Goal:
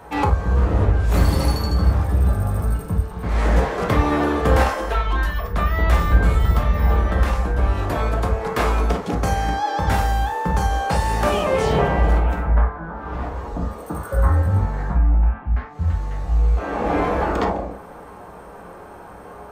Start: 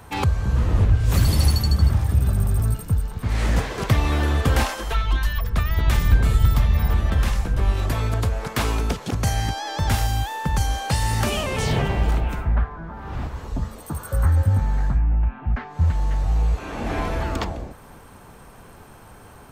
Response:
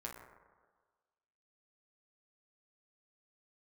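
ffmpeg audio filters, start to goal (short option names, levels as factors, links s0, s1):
-filter_complex "[0:a]asetnsamples=n=441:p=0,asendcmd='15.38 equalizer g 2.5;16.57 equalizer g 12.5',equalizer=f=620:w=0.37:g=10.5[s0];[1:a]atrim=start_sample=2205,atrim=end_sample=4410[s1];[s0][s1]afir=irnorm=-1:irlink=0"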